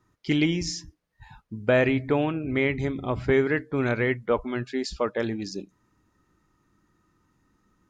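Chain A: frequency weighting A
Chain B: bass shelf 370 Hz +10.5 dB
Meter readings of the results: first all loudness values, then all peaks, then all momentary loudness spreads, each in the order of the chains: -29.0 LUFS, -20.5 LUFS; -9.5 dBFS, -5.0 dBFS; 10 LU, 9 LU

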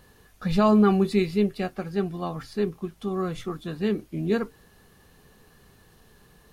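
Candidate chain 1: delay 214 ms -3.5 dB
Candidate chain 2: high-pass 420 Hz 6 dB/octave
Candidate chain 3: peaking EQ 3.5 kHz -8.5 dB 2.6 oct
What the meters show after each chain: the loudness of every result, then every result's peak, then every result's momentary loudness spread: -24.5 LUFS, -30.0 LUFS, -26.0 LUFS; -6.0 dBFS, -11.5 dBFS, -9.5 dBFS; 12 LU, 13 LU, 15 LU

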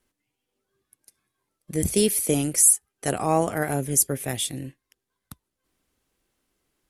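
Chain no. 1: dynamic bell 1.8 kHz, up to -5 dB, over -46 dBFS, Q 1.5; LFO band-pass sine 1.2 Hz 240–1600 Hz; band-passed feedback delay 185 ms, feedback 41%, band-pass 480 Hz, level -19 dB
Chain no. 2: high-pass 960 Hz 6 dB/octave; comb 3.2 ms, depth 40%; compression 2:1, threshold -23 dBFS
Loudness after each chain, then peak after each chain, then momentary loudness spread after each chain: -34.0 LUFS, -26.0 LUFS; -14.5 dBFS, -8.5 dBFS; 19 LU, 10 LU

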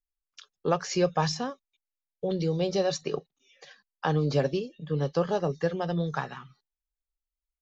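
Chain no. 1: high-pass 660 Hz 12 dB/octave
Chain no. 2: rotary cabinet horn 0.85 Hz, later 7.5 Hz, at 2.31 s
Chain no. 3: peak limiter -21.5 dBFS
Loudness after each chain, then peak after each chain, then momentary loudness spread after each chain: -34.5 LUFS, -31.0 LUFS, -32.5 LUFS; -13.5 dBFS, -12.5 dBFS, -21.5 dBFS; 22 LU, 9 LU, 10 LU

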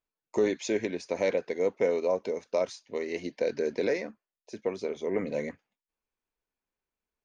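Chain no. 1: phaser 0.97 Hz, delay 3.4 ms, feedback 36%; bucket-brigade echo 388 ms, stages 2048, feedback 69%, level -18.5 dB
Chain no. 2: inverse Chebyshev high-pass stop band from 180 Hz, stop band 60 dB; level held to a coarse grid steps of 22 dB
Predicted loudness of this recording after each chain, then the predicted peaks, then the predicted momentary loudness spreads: -30.0 LUFS, -46.5 LUFS; -12.5 dBFS, -28.5 dBFS; 14 LU, 5 LU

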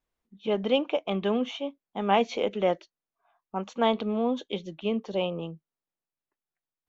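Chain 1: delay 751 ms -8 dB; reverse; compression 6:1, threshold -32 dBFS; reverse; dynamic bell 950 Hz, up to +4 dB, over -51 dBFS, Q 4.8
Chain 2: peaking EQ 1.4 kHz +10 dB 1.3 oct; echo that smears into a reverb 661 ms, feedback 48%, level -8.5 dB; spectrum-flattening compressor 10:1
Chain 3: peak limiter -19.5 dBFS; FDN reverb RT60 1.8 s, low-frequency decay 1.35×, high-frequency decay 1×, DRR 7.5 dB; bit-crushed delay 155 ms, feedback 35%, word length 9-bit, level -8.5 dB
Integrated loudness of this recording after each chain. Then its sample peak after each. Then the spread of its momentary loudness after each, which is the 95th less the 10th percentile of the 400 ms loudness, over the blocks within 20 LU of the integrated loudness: -37.0 LUFS, -25.0 LUFS, -30.5 LUFS; -22.0 dBFS, -4.0 dBFS, -15.0 dBFS; 5 LU, 3 LU, 11 LU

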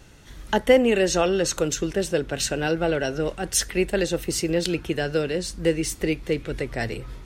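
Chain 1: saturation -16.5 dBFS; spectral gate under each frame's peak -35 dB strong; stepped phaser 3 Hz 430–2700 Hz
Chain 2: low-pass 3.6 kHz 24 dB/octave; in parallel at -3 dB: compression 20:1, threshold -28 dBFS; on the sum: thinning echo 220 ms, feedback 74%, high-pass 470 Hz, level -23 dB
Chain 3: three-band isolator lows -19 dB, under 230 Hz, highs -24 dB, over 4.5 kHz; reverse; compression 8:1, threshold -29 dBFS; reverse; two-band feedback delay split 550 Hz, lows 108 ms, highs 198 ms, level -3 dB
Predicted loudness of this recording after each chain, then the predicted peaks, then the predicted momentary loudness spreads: -30.0 LUFS, -23.0 LUFS, -31.5 LUFS; -15.0 dBFS, -3.0 dBFS, -16.5 dBFS; 6 LU, 8 LU, 3 LU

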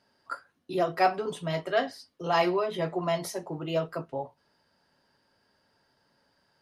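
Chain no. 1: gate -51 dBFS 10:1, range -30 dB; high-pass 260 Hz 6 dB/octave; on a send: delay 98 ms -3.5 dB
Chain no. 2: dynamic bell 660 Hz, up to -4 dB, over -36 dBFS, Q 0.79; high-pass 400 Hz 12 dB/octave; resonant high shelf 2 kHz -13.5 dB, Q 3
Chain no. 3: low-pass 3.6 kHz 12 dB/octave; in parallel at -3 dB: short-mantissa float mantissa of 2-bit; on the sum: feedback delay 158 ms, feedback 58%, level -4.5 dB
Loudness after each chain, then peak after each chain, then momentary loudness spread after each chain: -29.0 LUFS, -32.0 LUFS, -23.5 LUFS; -11.5 dBFS, -10.5 dBFS, -6.5 dBFS; 15 LU, 14 LU, 15 LU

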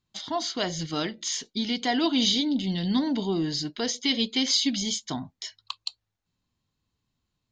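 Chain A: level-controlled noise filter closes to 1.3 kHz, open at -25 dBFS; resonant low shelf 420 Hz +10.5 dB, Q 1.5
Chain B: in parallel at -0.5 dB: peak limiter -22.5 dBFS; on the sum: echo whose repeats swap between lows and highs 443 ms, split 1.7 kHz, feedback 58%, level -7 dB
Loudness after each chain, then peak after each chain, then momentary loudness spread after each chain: -17.5 LUFS, -22.5 LUFS; -3.0 dBFS, -8.0 dBFS; 11 LU, 16 LU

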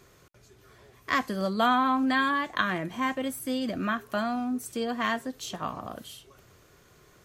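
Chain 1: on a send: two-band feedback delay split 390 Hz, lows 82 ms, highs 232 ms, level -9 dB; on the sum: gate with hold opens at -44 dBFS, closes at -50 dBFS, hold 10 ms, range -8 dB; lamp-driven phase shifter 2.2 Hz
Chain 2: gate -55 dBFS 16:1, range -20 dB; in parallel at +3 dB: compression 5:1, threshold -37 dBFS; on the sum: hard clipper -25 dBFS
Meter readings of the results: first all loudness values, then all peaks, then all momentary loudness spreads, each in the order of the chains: -31.0 LUFS, -29.5 LUFS; -13.5 dBFS, -25.0 dBFS; 13 LU, 8 LU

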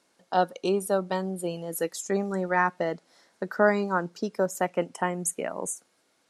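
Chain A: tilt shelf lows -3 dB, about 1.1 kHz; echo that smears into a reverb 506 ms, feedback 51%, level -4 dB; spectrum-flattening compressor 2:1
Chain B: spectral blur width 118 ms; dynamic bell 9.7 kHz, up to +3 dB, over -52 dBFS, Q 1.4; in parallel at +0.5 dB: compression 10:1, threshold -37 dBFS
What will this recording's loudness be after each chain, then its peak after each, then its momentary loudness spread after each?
-25.5 LUFS, -28.5 LUFS; -8.5 dBFS, -10.0 dBFS; 3 LU, 8 LU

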